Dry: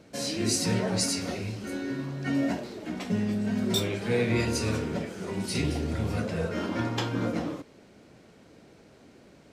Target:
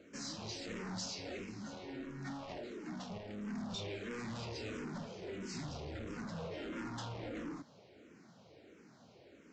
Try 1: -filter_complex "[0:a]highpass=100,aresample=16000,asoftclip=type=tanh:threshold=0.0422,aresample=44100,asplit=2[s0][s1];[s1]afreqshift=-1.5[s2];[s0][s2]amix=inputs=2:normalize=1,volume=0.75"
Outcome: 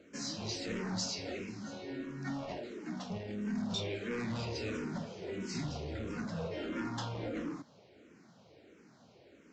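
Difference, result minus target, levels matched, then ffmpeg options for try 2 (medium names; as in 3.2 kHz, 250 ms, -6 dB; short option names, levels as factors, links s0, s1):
saturation: distortion -5 dB
-filter_complex "[0:a]highpass=100,aresample=16000,asoftclip=type=tanh:threshold=0.0168,aresample=44100,asplit=2[s0][s1];[s1]afreqshift=-1.5[s2];[s0][s2]amix=inputs=2:normalize=1,volume=0.75"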